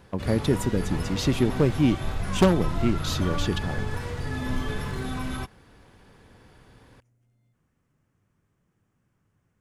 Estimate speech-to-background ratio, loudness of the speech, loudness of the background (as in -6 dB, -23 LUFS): 6.5 dB, -25.5 LUFS, -32.0 LUFS